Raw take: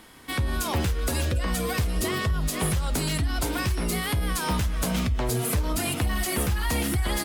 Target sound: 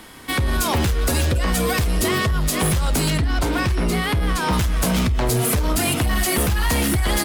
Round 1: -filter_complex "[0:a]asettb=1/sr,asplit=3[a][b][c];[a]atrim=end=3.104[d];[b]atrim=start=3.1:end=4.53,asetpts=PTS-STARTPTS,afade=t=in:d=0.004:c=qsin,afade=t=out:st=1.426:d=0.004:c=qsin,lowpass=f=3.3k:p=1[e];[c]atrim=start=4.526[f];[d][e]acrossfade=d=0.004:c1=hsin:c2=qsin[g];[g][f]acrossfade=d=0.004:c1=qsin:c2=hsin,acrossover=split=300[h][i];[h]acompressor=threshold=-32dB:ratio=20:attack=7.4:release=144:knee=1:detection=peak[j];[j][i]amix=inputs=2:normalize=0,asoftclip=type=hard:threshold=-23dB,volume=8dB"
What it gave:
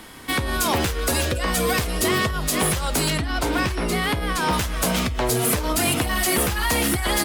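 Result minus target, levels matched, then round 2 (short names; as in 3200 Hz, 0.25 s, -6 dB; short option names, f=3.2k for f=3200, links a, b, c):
compressor: peak gain reduction +8 dB
-filter_complex "[0:a]asettb=1/sr,asplit=3[a][b][c];[a]atrim=end=3.104[d];[b]atrim=start=3.1:end=4.53,asetpts=PTS-STARTPTS,afade=t=in:d=0.004:c=qsin,afade=t=out:st=1.426:d=0.004:c=qsin,lowpass=f=3.3k:p=1[e];[c]atrim=start=4.526[f];[d][e]acrossfade=d=0.004:c1=hsin:c2=qsin[g];[g][f]acrossfade=d=0.004:c1=qsin:c2=hsin,acrossover=split=300[h][i];[h]acompressor=threshold=-23.5dB:ratio=20:attack=7.4:release=144:knee=1:detection=peak[j];[j][i]amix=inputs=2:normalize=0,asoftclip=type=hard:threshold=-23dB,volume=8dB"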